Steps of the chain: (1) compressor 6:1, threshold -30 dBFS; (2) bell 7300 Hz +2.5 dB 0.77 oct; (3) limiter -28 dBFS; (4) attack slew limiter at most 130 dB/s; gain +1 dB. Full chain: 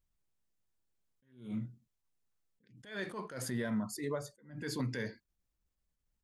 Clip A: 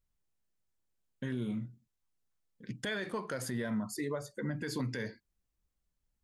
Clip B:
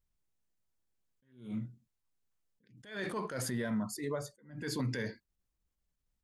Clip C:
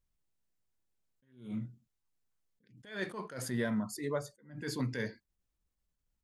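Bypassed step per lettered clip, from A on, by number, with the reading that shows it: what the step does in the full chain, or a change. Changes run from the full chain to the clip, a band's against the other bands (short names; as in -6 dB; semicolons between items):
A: 4, crest factor change -2.5 dB; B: 1, mean gain reduction 4.5 dB; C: 3, mean gain reduction 1.5 dB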